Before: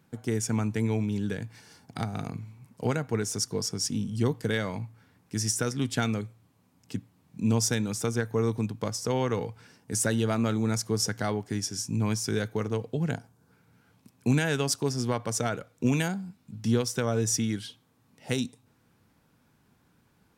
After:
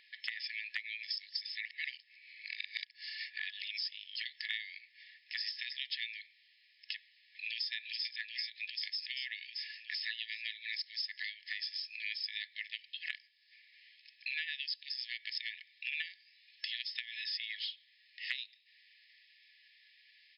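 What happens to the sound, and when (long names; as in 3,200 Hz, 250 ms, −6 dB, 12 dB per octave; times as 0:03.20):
0:01.03–0:03.77: reverse
0:06.96–0:07.71: delay throw 390 ms, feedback 65%, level −2 dB
whole clip: brick-wall band-pass 1,700–5,300 Hz; downward compressor 6 to 1, threshold −51 dBFS; level +14 dB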